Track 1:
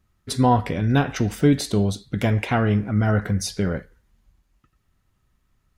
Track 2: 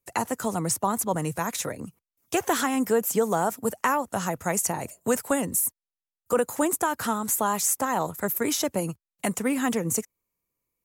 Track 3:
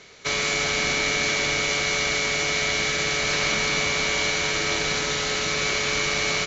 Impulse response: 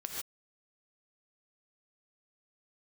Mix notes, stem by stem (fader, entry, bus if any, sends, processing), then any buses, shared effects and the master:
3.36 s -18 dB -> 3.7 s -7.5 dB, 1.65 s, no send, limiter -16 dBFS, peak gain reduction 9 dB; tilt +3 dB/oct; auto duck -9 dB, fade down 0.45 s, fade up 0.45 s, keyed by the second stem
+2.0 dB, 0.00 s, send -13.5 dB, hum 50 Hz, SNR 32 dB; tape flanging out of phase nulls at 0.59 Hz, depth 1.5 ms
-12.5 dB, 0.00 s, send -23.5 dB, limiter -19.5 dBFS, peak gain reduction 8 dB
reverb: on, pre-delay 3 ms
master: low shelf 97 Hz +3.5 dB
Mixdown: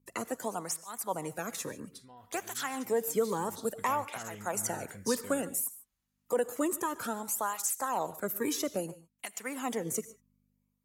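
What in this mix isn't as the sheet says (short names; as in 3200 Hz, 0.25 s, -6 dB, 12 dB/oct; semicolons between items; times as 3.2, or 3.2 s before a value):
stem 2 +2.0 dB -> -6.0 dB; stem 3: muted; master: missing low shelf 97 Hz +3.5 dB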